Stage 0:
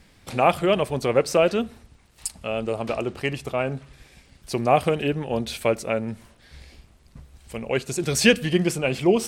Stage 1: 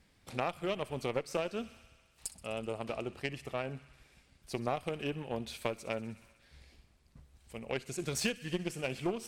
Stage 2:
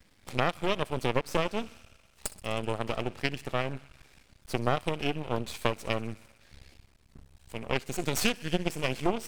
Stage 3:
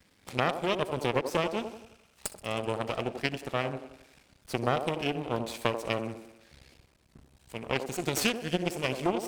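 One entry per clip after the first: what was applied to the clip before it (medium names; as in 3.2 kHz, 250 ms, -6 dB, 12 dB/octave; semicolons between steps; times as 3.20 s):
feedback echo behind a high-pass 63 ms, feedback 78%, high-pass 1.6 kHz, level -15 dB; Chebyshev shaper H 6 -25 dB, 7 -23 dB, 8 -34 dB, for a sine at -2 dBFS; compression 8:1, threshold -23 dBFS, peak gain reduction 13.5 dB; trim -6.5 dB
half-wave rectifier; trim +8.5 dB
high-pass 86 Hz 6 dB/octave; feedback echo behind a band-pass 88 ms, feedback 43%, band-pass 470 Hz, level -6 dB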